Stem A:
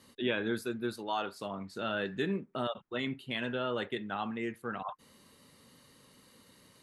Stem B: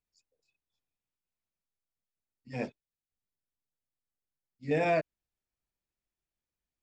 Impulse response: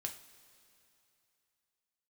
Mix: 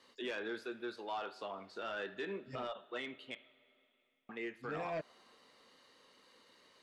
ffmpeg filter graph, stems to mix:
-filter_complex "[0:a]acrossover=split=330 6300:gain=0.1 1 0.0891[s0][s1][s2];[s0][s1][s2]amix=inputs=3:normalize=0,volume=0.596,asplit=3[s3][s4][s5];[s3]atrim=end=3.35,asetpts=PTS-STARTPTS,afade=t=out:st=3.346:d=0.004:c=hsin[s6];[s4]atrim=start=3.35:end=4.29,asetpts=PTS-STARTPTS,volume=0[s7];[s5]atrim=start=4.29,asetpts=PTS-STARTPTS,afade=t=in:d=0.004:c=hsin[s8];[s6][s7][s8]concat=n=3:v=0:a=1,asplit=3[s9][s10][s11];[s10]volume=0.596[s12];[1:a]volume=0.596[s13];[s11]apad=whole_len=300878[s14];[s13][s14]sidechaincompress=threshold=0.00447:ratio=8:attack=16:release=110[s15];[2:a]atrim=start_sample=2205[s16];[s12][s16]afir=irnorm=-1:irlink=0[s17];[s9][s15][s17]amix=inputs=3:normalize=0,acrossover=split=3700[s18][s19];[s19]acompressor=threshold=0.00158:ratio=4:attack=1:release=60[s20];[s18][s20]amix=inputs=2:normalize=0,asoftclip=type=tanh:threshold=0.0355,alimiter=level_in=2.82:limit=0.0631:level=0:latency=1:release=103,volume=0.355"

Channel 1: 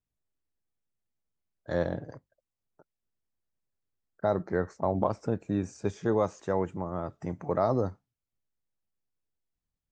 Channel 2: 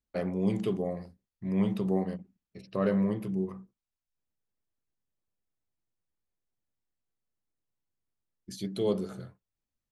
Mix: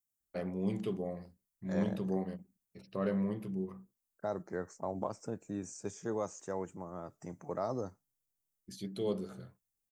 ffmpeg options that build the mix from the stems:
-filter_complex "[0:a]highpass=120,aexciter=amount=7.6:drive=2.5:freq=5600,volume=0.335[s0];[1:a]adelay=200,volume=0.501[s1];[s0][s1]amix=inputs=2:normalize=0"

